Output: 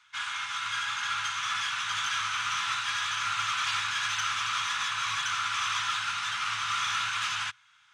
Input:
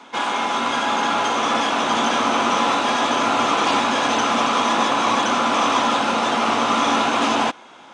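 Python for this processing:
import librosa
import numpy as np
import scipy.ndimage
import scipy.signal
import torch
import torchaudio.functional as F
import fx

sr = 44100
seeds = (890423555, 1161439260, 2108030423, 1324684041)

p1 = scipy.signal.sosfilt(scipy.signal.cheby1(3, 1.0, [110.0, 1400.0], 'bandstop', fs=sr, output='sos'), x)
p2 = fx.hum_notches(p1, sr, base_hz=60, count=2)
p3 = np.clip(10.0 ** (23.5 / 20.0) * p2, -1.0, 1.0) / 10.0 ** (23.5 / 20.0)
p4 = p2 + (p3 * librosa.db_to_amplitude(-9.0))
p5 = fx.upward_expand(p4, sr, threshold_db=-38.0, expansion=1.5)
y = p5 * librosa.db_to_amplitude(-6.5)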